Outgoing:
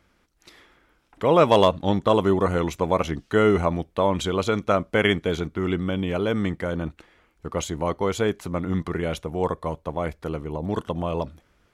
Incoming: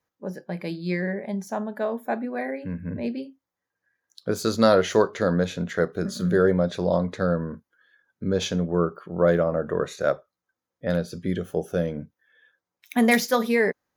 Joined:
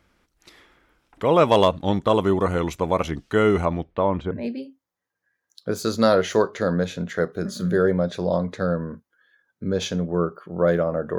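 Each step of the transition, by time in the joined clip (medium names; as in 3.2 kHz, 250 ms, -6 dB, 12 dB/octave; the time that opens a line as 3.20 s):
outgoing
3.65–4.31 s: low-pass 5.8 kHz -> 1.1 kHz
4.31 s: go over to incoming from 2.91 s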